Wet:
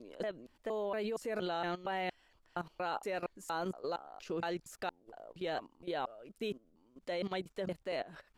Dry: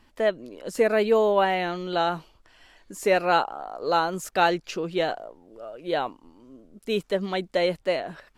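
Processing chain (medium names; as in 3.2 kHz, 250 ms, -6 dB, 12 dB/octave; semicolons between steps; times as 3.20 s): slices played last to first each 233 ms, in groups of 3; level held to a coarse grid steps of 16 dB; trim -4 dB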